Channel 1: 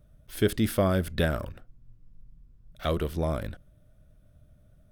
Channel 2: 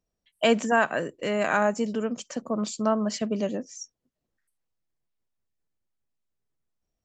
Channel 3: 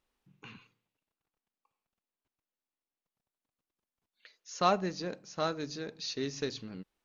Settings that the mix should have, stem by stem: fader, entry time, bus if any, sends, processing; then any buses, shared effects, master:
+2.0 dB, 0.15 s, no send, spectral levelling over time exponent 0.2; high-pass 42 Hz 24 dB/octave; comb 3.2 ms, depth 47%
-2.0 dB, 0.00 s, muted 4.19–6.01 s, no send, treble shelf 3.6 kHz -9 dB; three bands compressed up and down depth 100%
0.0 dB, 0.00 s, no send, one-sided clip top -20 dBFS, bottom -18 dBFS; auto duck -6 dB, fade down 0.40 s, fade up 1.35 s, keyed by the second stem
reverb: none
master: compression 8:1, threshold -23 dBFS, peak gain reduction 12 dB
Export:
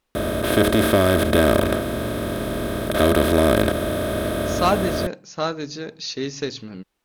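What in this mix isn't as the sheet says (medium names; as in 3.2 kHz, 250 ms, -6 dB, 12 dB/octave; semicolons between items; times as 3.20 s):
stem 2: muted; stem 3 0.0 dB -> +8.0 dB; master: missing compression 8:1, threshold -23 dBFS, peak gain reduction 12 dB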